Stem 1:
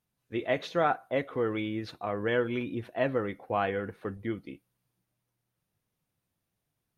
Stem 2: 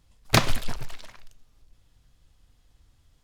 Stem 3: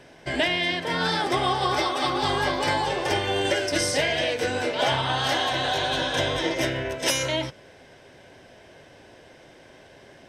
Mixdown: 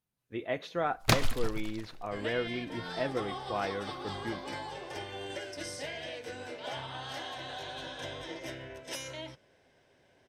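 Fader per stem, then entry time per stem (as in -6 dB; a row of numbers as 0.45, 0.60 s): -5.0, -5.5, -16.0 dB; 0.00, 0.75, 1.85 s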